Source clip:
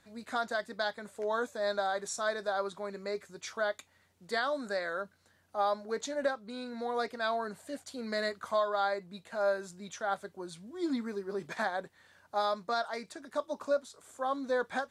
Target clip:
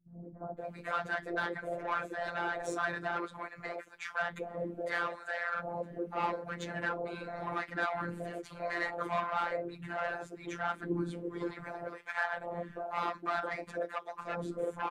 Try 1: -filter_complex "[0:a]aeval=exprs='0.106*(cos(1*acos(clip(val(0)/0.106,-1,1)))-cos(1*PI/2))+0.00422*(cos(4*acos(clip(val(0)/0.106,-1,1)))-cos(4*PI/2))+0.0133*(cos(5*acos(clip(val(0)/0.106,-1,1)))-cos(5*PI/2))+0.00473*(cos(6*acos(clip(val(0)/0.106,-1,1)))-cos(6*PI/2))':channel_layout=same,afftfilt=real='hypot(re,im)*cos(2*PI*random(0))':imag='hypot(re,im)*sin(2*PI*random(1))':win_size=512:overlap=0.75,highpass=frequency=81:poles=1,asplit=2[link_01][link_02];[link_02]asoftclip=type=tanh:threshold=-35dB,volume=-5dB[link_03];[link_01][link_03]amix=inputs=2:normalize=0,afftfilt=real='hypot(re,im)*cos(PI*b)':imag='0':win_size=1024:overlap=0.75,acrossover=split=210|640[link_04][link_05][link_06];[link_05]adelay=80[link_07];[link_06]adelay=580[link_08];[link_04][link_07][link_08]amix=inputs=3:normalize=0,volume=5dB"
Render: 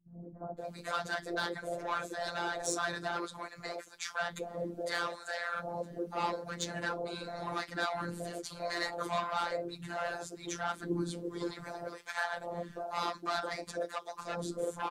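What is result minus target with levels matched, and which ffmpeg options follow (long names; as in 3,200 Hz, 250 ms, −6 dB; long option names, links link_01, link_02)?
8,000 Hz band +12.5 dB
-filter_complex "[0:a]aeval=exprs='0.106*(cos(1*acos(clip(val(0)/0.106,-1,1)))-cos(1*PI/2))+0.00422*(cos(4*acos(clip(val(0)/0.106,-1,1)))-cos(4*PI/2))+0.0133*(cos(5*acos(clip(val(0)/0.106,-1,1)))-cos(5*PI/2))+0.00473*(cos(6*acos(clip(val(0)/0.106,-1,1)))-cos(6*PI/2))':channel_layout=same,afftfilt=real='hypot(re,im)*cos(2*PI*random(0))':imag='hypot(re,im)*sin(2*PI*random(1))':win_size=512:overlap=0.75,highpass=frequency=81:poles=1,highshelf=frequency=3300:width_type=q:width=1.5:gain=-11,asplit=2[link_01][link_02];[link_02]asoftclip=type=tanh:threshold=-35dB,volume=-5dB[link_03];[link_01][link_03]amix=inputs=2:normalize=0,afftfilt=real='hypot(re,im)*cos(PI*b)':imag='0':win_size=1024:overlap=0.75,acrossover=split=210|640[link_04][link_05][link_06];[link_05]adelay=80[link_07];[link_06]adelay=580[link_08];[link_04][link_07][link_08]amix=inputs=3:normalize=0,volume=5dB"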